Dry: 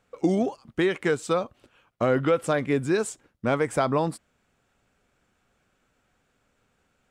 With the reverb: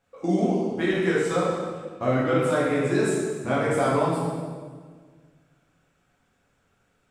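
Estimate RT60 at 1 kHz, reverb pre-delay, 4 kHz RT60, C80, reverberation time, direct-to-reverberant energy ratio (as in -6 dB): 1.5 s, 4 ms, 1.3 s, 1.0 dB, 1.6 s, -9.0 dB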